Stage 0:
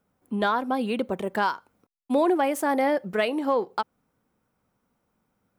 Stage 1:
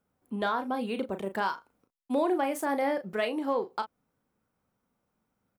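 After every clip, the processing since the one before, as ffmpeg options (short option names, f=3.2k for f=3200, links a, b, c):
-filter_complex "[0:a]asplit=2[a][b];[b]adelay=36,volume=-9dB[c];[a][c]amix=inputs=2:normalize=0,volume=-5.5dB"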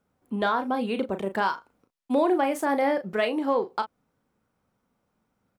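-af "highshelf=f=9.6k:g=-8,volume=4.5dB"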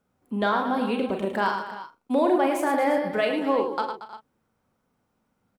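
-af "aecho=1:1:44|107|231|313|348:0.355|0.447|0.211|0.106|0.178"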